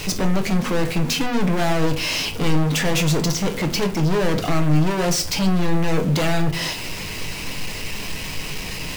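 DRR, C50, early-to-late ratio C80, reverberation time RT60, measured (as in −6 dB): 4.0 dB, 14.0 dB, 18.0 dB, 0.40 s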